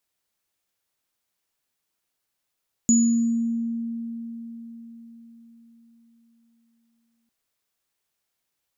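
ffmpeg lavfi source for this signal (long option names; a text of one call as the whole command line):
ffmpeg -f lavfi -i "aevalsrc='0.188*pow(10,-3*t/4.75)*sin(2*PI*231*t)+0.15*pow(10,-3*t/0.79)*sin(2*PI*6890*t)':duration=4.4:sample_rate=44100" out.wav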